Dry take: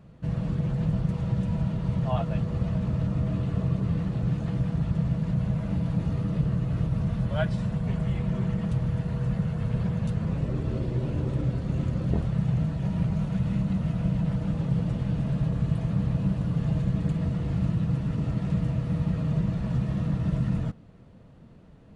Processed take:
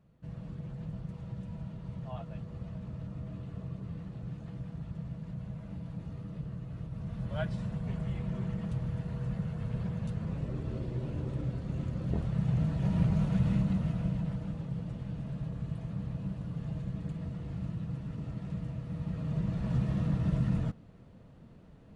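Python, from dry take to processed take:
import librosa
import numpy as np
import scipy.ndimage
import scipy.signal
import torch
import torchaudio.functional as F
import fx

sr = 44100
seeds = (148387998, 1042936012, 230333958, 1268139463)

y = fx.gain(x, sr, db=fx.line((6.9, -14.0), (7.37, -7.5), (11.94, -7.5), (12.95, -1.0), (13.49, -1.0), (14.69, -11.0), (18.9, -11.0), (19.76, -3.0)))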